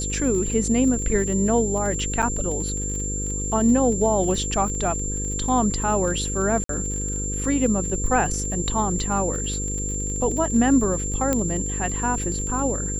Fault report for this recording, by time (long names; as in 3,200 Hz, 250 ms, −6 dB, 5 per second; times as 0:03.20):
mains buzz 50 Hz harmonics 10 −29 dBFS
surface crackle 31 per second −29 dBFS
whistle 7,300 Hz −28 dBFS
0:02.22–0:02.23: drop-out 7.1 ms
0:06.64–0:06.69: drop-out 53 ms
0:11.33: click −8 dBFS